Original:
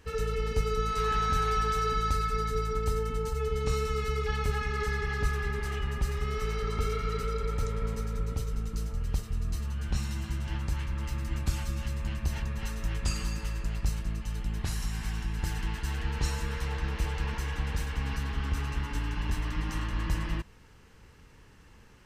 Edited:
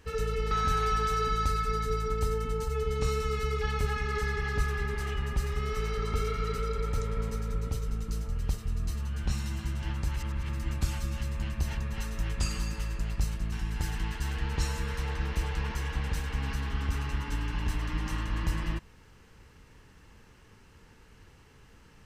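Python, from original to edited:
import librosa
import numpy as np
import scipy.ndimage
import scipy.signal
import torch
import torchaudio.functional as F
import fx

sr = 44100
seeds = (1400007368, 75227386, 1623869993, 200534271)

y = fx.edit(x, sr, fx.cut(start_s=0.51, length_s=0.65),
    fx.reverse_span(start_s=10.81, length_s=0.33),
    fx.cut(start_s=14.17, length_s=0.98), tone=tone)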